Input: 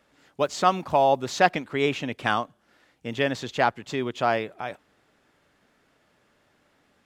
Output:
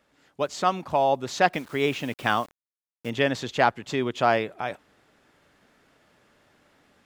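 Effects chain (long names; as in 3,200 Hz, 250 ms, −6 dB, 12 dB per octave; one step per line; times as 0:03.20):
0:01.53–0:03.10: bit-depth reduction 8 bits, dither none
speech leveller 2 s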